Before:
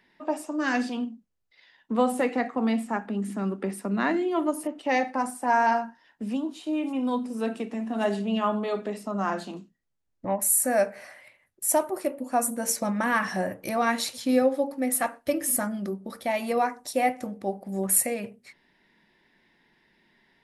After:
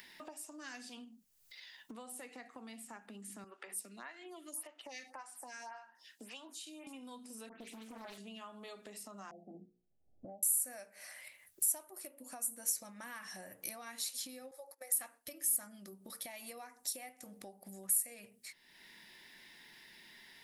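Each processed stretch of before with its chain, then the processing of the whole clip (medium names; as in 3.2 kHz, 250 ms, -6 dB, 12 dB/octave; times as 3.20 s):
3.44–6.87 s: frequency weighting A + lamp-driven phase shifter 1.8 Hz
7.49–8.18 s: doubling 37 ms -12 dB + phase dispersion highs, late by 125 ms, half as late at 2.5 kHz + loudspeaker Doppler distortion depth 0.5 ms
9.31–10.43 s: Chebyshev low-pass 810 Hz, order 10 + hum notches 60/120/180/240/300/360/420/480 Hz
14.51–14.97 s: elliptic high-pass 400 Hz, stop band 50 dB + gate -43 dBFS, range -21 dB + peaking EQ 3 kHz -11.5 dB 0.58 oct
whole clip: compression 5:1, threshold -38 dBFS; pre-emphasis filter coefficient 0.9; upward compressor, threshold -50 dBFS; trim +5 dB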